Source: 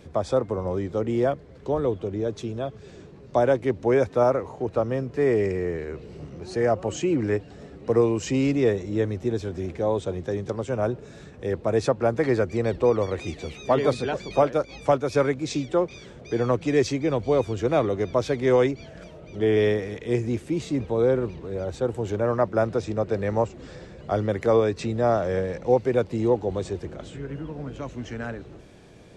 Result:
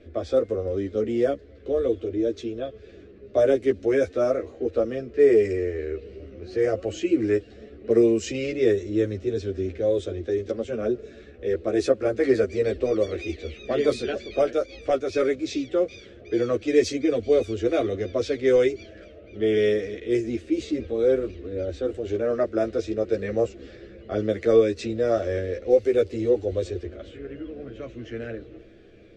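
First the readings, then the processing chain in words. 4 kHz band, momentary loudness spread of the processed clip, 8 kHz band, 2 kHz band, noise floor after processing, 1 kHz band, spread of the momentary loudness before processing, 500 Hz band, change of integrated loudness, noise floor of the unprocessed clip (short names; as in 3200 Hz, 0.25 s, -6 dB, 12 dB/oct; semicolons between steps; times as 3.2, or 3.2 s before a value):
+0.5 dB, 14 LU, -1.5 dB, -1.5 dB, -47 dBFS, -8.0 dB, 13 LU, +1.0 dB, +0.5 dB, -46 dBFS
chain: fixed phaser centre 380 Hz, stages 4; chorus voices 4, 0.11 Hz, delay 12 ms, depth 3.2 ms; low-pass opened by the level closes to 2500 Hz, open at -20.5 dBFS; gain +5 dB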